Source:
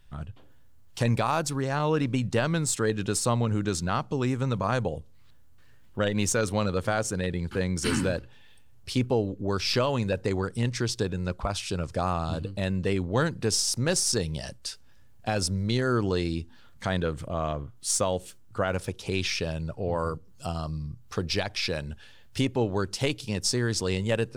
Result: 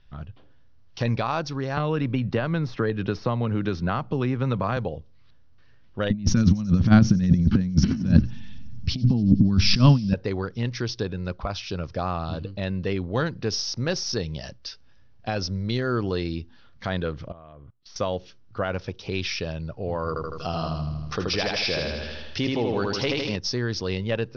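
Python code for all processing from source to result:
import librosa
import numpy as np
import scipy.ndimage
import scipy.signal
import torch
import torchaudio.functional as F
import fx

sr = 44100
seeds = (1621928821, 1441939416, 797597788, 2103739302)

y = fx.chain(x, sr, fx.bass_treble(bass_db=1, treble_db=-13),
    fx.band_squash(depth_pct=100), at=(1.77, 4.77))
y = fx.chain(y, sr, fx.low_shelf_res(hz=320.0, db=13.5, q=3.0),
    fx.over_compress(threshold_db=-17.0, ratio=-0.5),
    fx.echo_wet_highpass(ms=93, feedback_pct=75, hz=5500.0, wet_db=-16.0), at=(6.1, 10.14))
y = fx.chain(y, sr, fx.lowpass(hz=3100.0, slope=12),
    fx.level_steps(step_db=23), at=(17.32, 17.96))
y = fx.chain(y, sr, fx.low_shelf(hz=140.0, db=-7.5),
    fx.echo_feedback(ms=79, feedback_pct=54, wet_db=-3.5),
    fx.env_flatten(amount_pct=50), at=(20.08, 23.36))
y = scipy.signal.sosfilt(scipy.signal.butter(16, 5900.0, 'lowpass', fs=sr, output='sos'), y)
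y = fx.notch(y, sr, hz=900.0, q=24.0)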